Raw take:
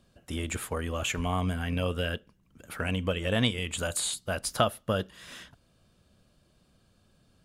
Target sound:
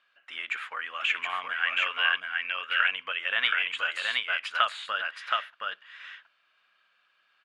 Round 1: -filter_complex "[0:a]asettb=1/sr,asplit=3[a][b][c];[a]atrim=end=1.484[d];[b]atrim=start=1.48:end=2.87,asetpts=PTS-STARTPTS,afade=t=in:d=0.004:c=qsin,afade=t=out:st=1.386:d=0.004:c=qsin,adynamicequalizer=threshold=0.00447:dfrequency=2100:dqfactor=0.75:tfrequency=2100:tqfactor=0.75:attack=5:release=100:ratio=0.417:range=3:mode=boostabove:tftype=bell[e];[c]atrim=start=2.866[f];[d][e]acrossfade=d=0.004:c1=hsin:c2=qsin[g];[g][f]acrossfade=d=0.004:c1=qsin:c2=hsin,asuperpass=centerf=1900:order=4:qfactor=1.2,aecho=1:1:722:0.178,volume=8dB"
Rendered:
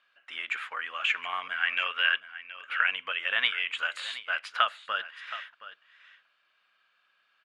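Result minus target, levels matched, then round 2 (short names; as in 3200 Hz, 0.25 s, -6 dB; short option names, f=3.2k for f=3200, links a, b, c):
echo-to-direct -12 dB
-filter_complex "[0:a]asettb=1/sr,asplit=3[a][b][c];[a]atrim=end=1.484[d];[b]atrim=start=1.48:end=2.87,asetpts=PTS-STARTPTS,afade=t=in:d=0.004:c=qsin,afade=t=out:st=1.386:d=0.004:c=qsin,adynamicequalizer=threshold=0.00447:dfrequency=2100:dqfactor=0.75:tfrequency=2100:tqfactor=0.75:attack=5:release=100:ratio=0.417:range=3:mode=boostabove:tftype=bell[e];[c]atrim=start=2.866[f];[d][e]acrossfade=d=0.004:c1=hsin:c2=qsin[g];[g][f]acrossfade=d=0.004:c1=qsin:c2=hsin,asuperpass=centerf=1900:order=4:qfactor=1.2,aecho=1:1:722:0.708,volume=8dB"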